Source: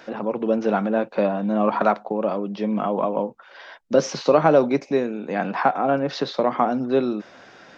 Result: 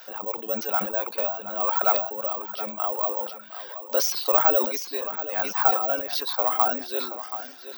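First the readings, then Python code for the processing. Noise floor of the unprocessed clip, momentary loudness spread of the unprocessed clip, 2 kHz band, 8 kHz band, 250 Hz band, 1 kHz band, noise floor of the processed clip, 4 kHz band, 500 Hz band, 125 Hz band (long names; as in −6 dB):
−49 dBFS, 8 LU, −2.5 dB, can't be measured, −17.5 dB, −3.5 dB, −43 dBFS, +3.5 dB, −8.5 dB, below −20 dB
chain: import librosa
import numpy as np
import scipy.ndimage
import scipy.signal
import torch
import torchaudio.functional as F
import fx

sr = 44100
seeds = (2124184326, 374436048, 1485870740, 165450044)

y = fx.high_shelf(x, sr, hz=6000.0, db=11.0)
y = fx.dereverb_blind(y, sr, rt60_s=1.1)
y = scipy.signal.sosfilt(scipy.signal.butter(2, 870.0, 'highpass', fs=sr, output='sos'), y)
y = (np.kron(scipy.signal.resample_poly(y, 1, 2), np.eye(2)[0]) * 2)[:len(y)]
y = fx.peak_eq(y, sr, hz=2000.0, db=-7.0, octaves=0.72)
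y = fx.echo_feedback(y, sr, ms=726, feedback_pct=32, wet_db=-12.0)
y = fx.sustainer(y, sr, db_per_s=84.0)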